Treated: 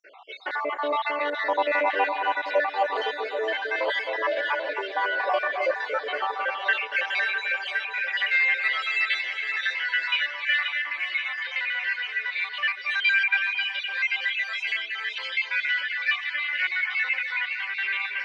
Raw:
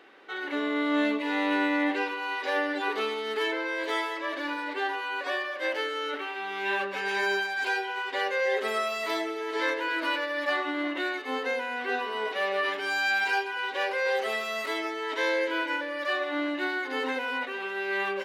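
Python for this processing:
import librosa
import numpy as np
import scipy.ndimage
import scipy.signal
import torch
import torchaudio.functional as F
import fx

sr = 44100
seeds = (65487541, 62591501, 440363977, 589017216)

p1 = fx.spec_dropout(x, sr, seeds[0], share_pct=66)
p2 = 10.0 ** (-35.0 / 20.0) * np.tanh(p1 / 10.0 ** (-35.0 / 20.0))
p3 = p1 + F.gain(torch.from_numpy(p2), -9.0).numpy()
p4 = fx.bandpass_edges(p3, sr, low_hz=290.0, high_hz=3800.0)
p5 = fx.filter_sweep_highpass(p4, sr, from_hz=650.0, to_hz=2200.0, start_s=6.07, end_s=6.83, q=2.5)
p6 = fx.echo_alternate(p5, sr, ms=264, hz=2000.0, feedback_pct=79, wet_db=-6)
y = F.gain(torch.from_numpy(p6), 4.5).numpy()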